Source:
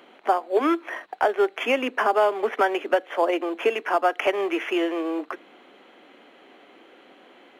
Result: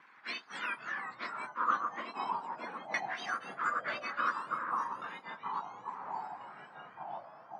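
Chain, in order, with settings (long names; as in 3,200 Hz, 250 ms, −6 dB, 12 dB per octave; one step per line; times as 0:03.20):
frequency axis turned over on the octave scale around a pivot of 1,800 Hz
auto-filter low-pass saw down 0.34 Hz 730–2,000 Hz
delay with pitch and tempo change per echo 174 ms, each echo −4 semitones, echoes 3, each echo −6 dB
level −5 dB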